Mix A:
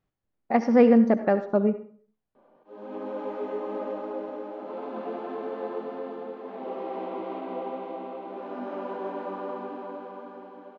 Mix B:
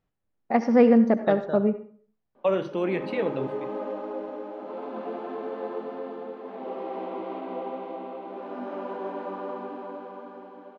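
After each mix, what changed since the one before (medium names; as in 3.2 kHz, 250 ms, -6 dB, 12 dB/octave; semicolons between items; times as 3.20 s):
second voice: unmuted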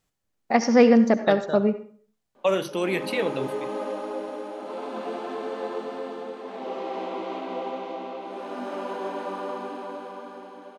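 second voice: send -7.5 dB; master: remove tape spacing loss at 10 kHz 32 dB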